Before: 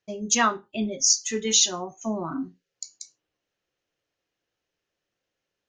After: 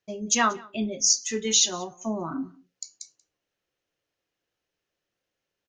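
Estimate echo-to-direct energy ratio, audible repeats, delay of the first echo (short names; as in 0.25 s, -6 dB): -24.0 dB, 1, 0.184 s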